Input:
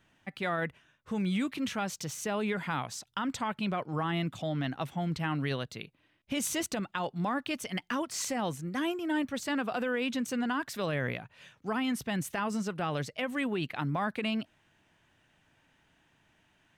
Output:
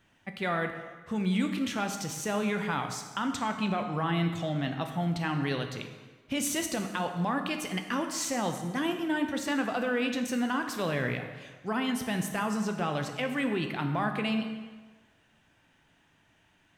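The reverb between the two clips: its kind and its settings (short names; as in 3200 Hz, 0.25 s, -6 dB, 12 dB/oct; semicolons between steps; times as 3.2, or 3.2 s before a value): plate-style reverb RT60 1.4 s, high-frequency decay 0.8×, DRR 5 dB; gain +1 dB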